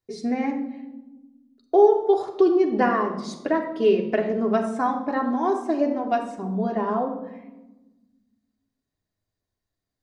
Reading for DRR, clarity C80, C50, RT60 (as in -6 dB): 1.5 dB, 10.5 dB, 8.0 dB, 1.1 s